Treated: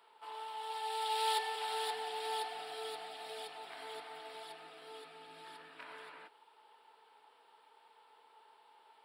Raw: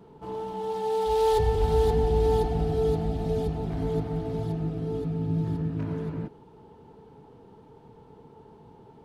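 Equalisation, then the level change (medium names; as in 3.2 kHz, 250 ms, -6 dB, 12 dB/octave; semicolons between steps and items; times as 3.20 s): boxcar filter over 7 samples; high-pass 800 Hz 12 dB/octave; differentiator; +14.5 dB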